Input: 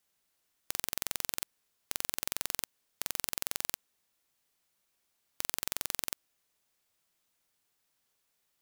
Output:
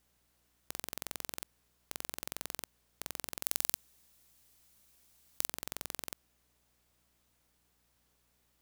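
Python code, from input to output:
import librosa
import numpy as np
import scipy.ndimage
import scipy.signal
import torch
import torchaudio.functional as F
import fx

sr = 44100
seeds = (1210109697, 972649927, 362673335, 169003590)

y = fx.over_compress(x, sr, threshold_db=-40.0, ratio=-1.0)
y = fx.tilt_shelf(y, sr, db=3.5, hz=1100.0)
y = fx.add_hum(y, sr, base_hz=60, snr_db=32)
y = fx.high_shelf(y, sr, hz=3400.0, db=10.5, at=(3.42, 5.46), fade=0.02)
y = y * 10.0 ** (1.0 / 20.0)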